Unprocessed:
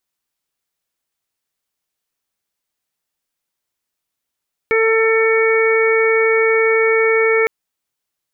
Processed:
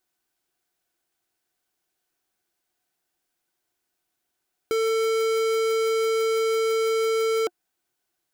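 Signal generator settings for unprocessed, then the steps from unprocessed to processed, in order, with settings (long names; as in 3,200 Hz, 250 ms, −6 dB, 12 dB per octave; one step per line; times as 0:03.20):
steady harmonic partials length 2.76 s, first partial 447 Hz, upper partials −16/−10/−9.5/−4.5 dB, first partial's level −13 dB
hard clipping −24.5 dBFS
hollow resonant body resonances 350/720/1,500 Hz, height 11 dB, ringing for 45 ms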